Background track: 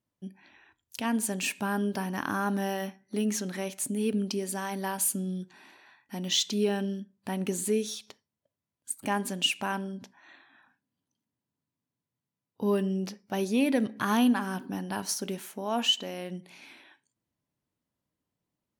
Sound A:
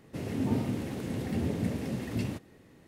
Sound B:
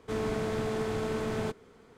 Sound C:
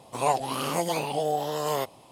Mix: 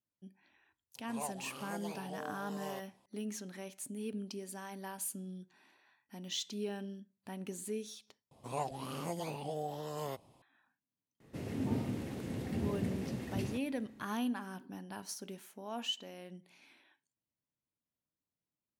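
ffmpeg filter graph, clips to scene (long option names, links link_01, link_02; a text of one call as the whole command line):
ffmpeg -i bed.wav -i cue0.wav -i cue1.wav -i cue2.wav -filter_complex "[3:a]asplit=2[link_01][link_02];[0:a]volume=-12dB[link_03];[link_02]lowshelf=frequency=280:gain=11[link_04];[link_03]asplit=2[link_05][link_06];[link_05]atrim=end=8.314[link_07];[link_04]atrim=end=2.11,asetpts=PTS-STARTPTS,volume=-15dB[link_08];[link_06]atrim=start=10.416[link_09];[link_01]atrim=end=2.11,asetpts=PTS-STARTPTS,volume=-18dB,afade=type=in:duration=0.004:curve=hsin,afade=type=out:start_time=2.106:duration=0.004:curve=hsin,adelay=950[link_10];[1:a]atrim=end=2.87,asetpts=PTS-STARTPTS,volume=-5.5dB,afade=type=in:duration=0.004:curve=hsin,afade=type=out:start_time=2.866:duration=0.004:curve=hsin,adelay=11200[link_11];[link_07][link_08]acrossfade=duration=0.004:curve1=hsin:curve2=hsin[link_12];[link_12][link_09]acrossfade=duration=0.004:curve1=hsin:curve2=hsin[link_13];[link_13][link_10][link_11]amix=inputs=3:normalize=0" out.wav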